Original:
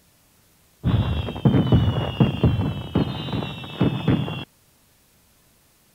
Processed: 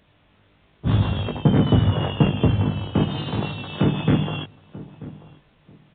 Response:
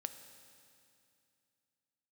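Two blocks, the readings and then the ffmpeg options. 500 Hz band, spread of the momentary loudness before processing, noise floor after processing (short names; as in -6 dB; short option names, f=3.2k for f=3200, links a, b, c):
+1.5 dB, 10 LU, -59 dBFS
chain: -filter_complex "[0:a]asplit=2[a][b];[b]adelay=20,volume=-4dB[c];[a][c]amix=inputs=2:normalize=0,asplit=2[d][e];[e]adelay=937,lowpass=f=1k:p=1,volume=-17.5dB,asplit=2[f][g];[g]adelay=937,lowpass=f=1k:p=1,volume=0.25[h];[f][h]amix=inputs=2:normalize=0[i];[d][i]amix=inputs=2:normalize=0,aresample=8000,aresample=44100"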